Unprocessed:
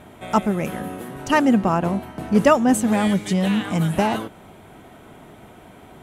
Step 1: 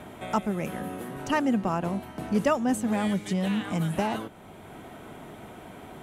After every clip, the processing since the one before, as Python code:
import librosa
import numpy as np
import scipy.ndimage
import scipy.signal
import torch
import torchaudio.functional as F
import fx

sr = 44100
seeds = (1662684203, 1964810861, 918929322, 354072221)

y = fx.band_squash(x, sr, depth_pct=40)
y = y * librosa.db_to_amplitude(-7.5)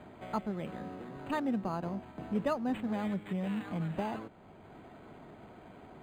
y = np.interp(np.arange(len(x)), np.arange(len(x))[::8], x[::8])
y = y * librosa.db_to_amplitude(-7.5)